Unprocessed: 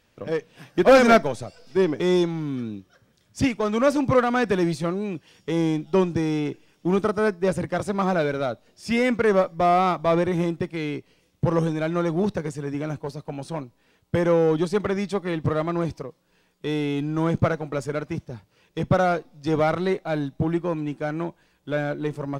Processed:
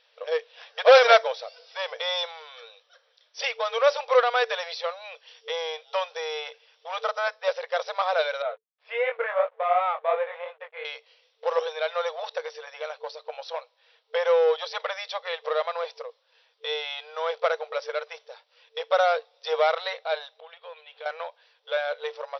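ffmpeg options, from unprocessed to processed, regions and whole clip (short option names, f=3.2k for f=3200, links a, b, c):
-filter_complex "[0:a]asettb=1/sr,asplit=3[a][b][c];[a]atrim=end=8.424[d];[b]atrim=start=8.42:end=10.85,asetpts=PTS-STARTPTS,afade=t=in:d=0.004:c=qsin,afade=t=out:st=2.426:d=0.004:c=qsin,flanger=delay=19:depth=4.7:speed=2.8,aeval=exprs='sgn(val(0))*max(abs(val(0))-0.00335,0)':c=same,lowpass=f=2.5k:w=0.5412,lowpass=f=2.5k:w=1.3066[e];[c]atrim=start=10.846[f];[d][e]acrossfade=d=0.004:c1=hsin:c2=qsin[g];[g][f]acrossfade=d=0.004:c1=qsin:c2=hsin,asettb=1/sr,asplit=3[h][i][j];[h]atrim=end=20.394[k];[i]atrim=start=20.39:end=21.06,asetpts=PTS-STARTPTS,afade=t=in:d=0.004:c=qsin,afade=t=out:st=0.666:d=0.004:c=qsin,lowpass=f=3.4k:t=q:w=2.5,acompressor=threshold=-34dB:ratio=16:attack=3.2:release=140:knee=1:detection=peak[l];[j]atrim=start=21.056[m];[k][l]acrossfade=d=0.004:c1=hsin:c2=qsin[n];[n][m]acrossfade=d=0.004:c1=qsin:c2=hsin,afftfilt=real='re*between(b*sr/4096,450,5900)':imag='im*between(b*sr/4096,450,5900)':win_size=4096:overlap=0.75,equalizer=f=3.6k:t=o:w=0.69:g=8.5"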